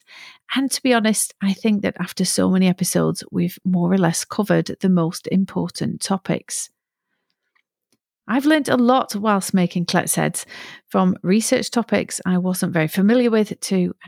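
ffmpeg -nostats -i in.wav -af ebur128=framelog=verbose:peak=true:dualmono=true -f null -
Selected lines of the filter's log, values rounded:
Integrated loudness:
  I:         -16.6 LUFS
  Threshold: -27.0 LUFS
Loudness range:
  LRA:         4.5 LU
  Threshold: -37.3 LUFS
  LRA low:   -20.6 LUFS
  LRA high:  -16.1 LUFS
True peak:
  Peak:       -2.1 dBFS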